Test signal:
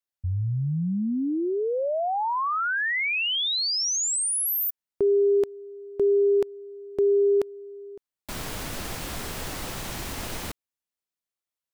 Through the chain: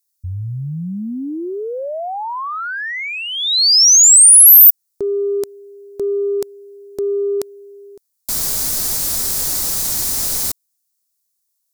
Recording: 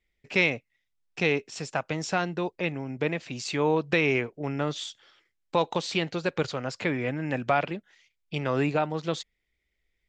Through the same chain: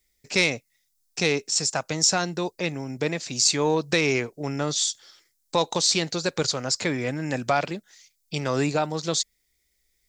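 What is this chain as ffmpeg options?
-af "acontrast=44,aexciter=amount=6.9:drive=4.6:freq=4200,volume=0.631"

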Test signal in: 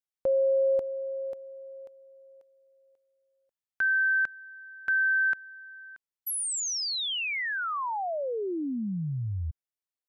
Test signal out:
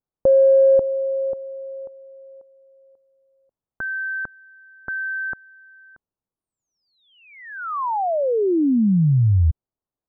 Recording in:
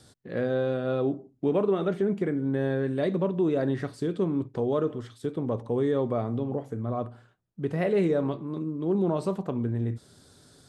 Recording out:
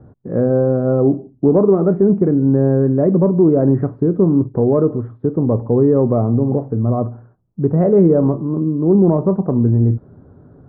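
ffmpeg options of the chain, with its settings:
-af "lowpass=f=1200:w=0.5412,lowpass=f=1200:w=1.3066,acontrast=70,lowshelf=f=470:g=9.5"

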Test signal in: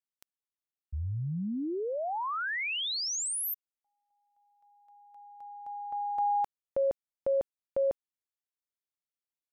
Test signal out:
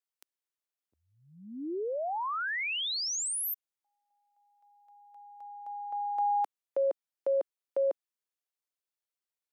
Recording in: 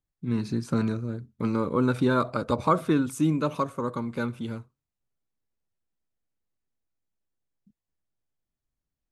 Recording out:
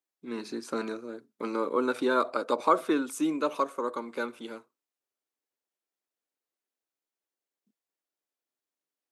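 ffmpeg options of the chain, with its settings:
-af "highpass=f=310:w=0.5412,highpass=f=310:w=1.3066"

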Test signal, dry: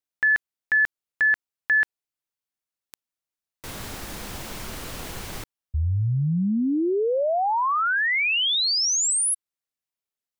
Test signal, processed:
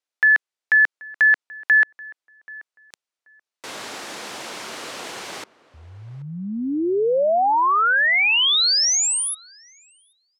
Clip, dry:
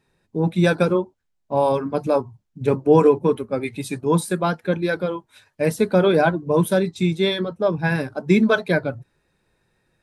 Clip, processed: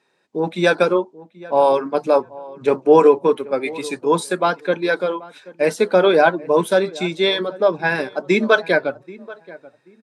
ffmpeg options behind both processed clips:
-filter_complex "[0:a]highpass=370,lowpass=7600,asplit=2[s0][s1];[s1]adelay=782,lowpass=f=1500:p=1,volume=0.106,asplit=2[s2][s3];[s3]adelay=782,lowpass=f=1500:p=1,volume=0.24[s4];[s2][s4]amix=inputs=2:normalize=0[s5];[s0][s5]amix=inputs=2:normalize=0,volume=1.78"

